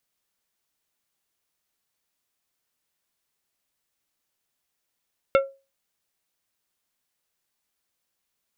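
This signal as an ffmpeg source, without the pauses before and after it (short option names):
-f lavfi -i "aevalsrc='0.251*pow(10,-3*t/0.29)*sin(2*PI*545*t)+0.141*pow(10,-3*t/0.153)*sin(2*PI*1362.5*t)+0.0794*pow(10,-3*t/0.11)*sin(2*PI*2180*t)+0.0447*pow(10,-3*t/0.094)*sin(2*PI*2725*t)+0.0251*pow(10,-3*t/0.078)*sin(2*PI*3542.5*t)':d=0.89:s=44100"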